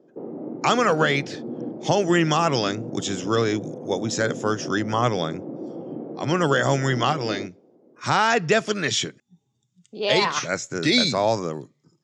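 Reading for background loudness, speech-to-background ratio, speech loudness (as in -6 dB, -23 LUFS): -34.5 LUFS, 11.5 dB, -23.0 LUFS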